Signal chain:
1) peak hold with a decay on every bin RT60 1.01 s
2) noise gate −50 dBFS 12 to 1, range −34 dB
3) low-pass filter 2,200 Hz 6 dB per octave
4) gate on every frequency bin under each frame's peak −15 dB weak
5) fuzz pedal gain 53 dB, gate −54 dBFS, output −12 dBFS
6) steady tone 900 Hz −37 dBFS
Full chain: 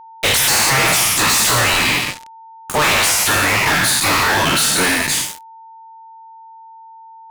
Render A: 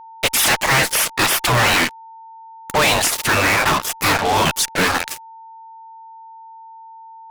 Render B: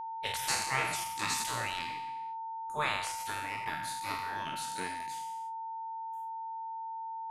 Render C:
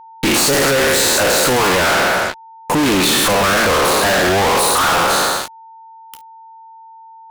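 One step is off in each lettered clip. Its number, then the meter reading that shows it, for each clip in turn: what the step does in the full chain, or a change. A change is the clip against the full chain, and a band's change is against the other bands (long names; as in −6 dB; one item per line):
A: 1, 8 kHz band −4.5 dB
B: 5, distortion level −1 dB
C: 4, 500 Hz band +9.0 dB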